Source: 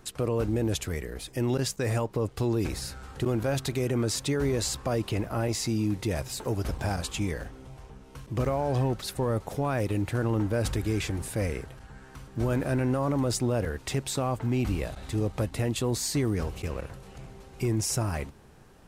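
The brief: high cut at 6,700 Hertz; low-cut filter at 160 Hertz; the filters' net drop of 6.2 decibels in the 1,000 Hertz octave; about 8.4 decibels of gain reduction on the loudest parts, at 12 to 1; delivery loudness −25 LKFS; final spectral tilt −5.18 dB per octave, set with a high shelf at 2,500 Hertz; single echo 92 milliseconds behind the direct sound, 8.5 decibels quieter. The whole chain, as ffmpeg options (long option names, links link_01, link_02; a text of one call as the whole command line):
ffmpeg -i in.wav -af "highpass=160,lowpass=6700,equalizer=frequency=1000:width_type=o:gain=-8,highshelf=frequency=2500:gain=-4.5,acompressor=threshold=-33dB:ratio=12,aecho=1:1:92:0.376,volume=14dB" out.wav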